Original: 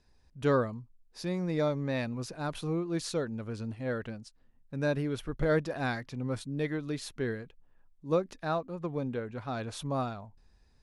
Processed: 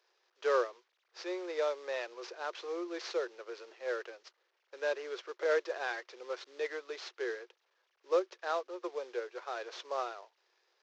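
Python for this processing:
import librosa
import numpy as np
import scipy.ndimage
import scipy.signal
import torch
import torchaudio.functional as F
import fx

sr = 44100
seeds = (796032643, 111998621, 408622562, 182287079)

y = fx.cvsd(x, sr, bps=32000)
y = scipy.signal.sosfilt(scipy.signal.cheby1(6, 3, 350.0, 'highpass', fs=sr, output='sos'), y)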